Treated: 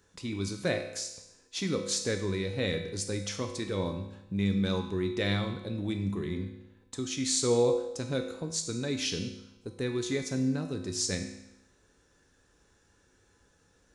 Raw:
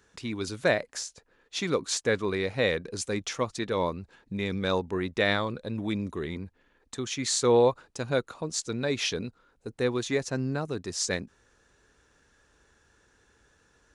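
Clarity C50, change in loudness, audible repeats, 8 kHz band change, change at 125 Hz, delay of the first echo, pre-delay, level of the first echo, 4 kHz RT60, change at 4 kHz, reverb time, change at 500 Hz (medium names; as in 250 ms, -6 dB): 7.5 dB, -2.5 dB, no echo, 0.0 dB, +1.0 dB, no echo, 4 ms, no echo, 0.85 s, -2.0 dB, 0.90 s, -4.5 dB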